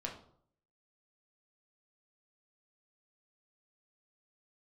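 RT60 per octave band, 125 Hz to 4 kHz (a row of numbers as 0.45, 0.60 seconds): 0.75, 0.65, 0.65, 0.60, 0.40, 0.40 seconds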